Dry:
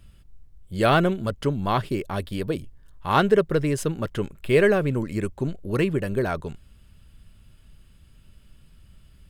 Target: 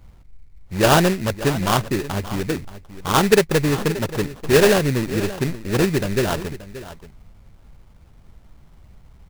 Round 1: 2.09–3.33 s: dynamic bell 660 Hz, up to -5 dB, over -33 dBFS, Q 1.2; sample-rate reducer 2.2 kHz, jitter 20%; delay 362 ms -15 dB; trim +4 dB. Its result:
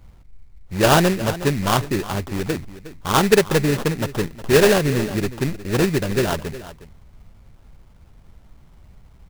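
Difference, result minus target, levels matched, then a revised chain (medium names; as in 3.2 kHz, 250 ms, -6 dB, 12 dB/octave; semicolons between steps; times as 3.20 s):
echo 216 ms early
2.09–3.33 s: dynamic bell 660 Hz, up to -5 dB, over -33 dBFS, Q 1.2; sample-rate reducer 2.2 kHz, jitter 20%; delay 578 ms -15 dB; trim +4 dB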